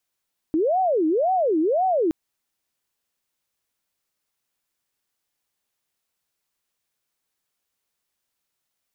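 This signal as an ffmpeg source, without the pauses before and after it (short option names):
-f lavfi -i "aevalsrc='0.133*sin(2*PI*(533.5*t-224.5/(2*PI*1.9)*sin(2*PI*1.9*t)))':d=1.57:s=44100"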